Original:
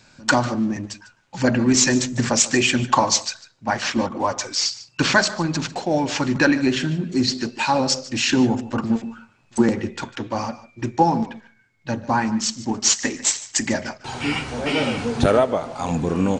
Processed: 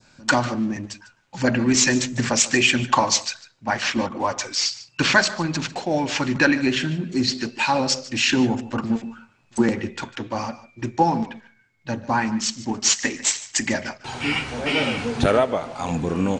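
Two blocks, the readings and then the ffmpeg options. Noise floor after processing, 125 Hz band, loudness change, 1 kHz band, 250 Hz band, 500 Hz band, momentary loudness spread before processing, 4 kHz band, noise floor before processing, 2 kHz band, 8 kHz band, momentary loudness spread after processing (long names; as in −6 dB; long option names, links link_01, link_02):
−59 dBFS, −2.0 dB, −1.0 dB, −1.0 dB, −2.0 dB, −2.0 dB, 12 LU, 0.0 dB, −58 dBFS, +1.5 dB, −1.5 dB, 13 LU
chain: -af "adynamicequalizer=threshold=0.02:dfrequency=2400:dqfactor=1:tfrequency=2400:tqfactor=1:attack=5:release=100:ratio=0.375:range=2.5:mode=boostabove:tftype=bell,volume=-2dB"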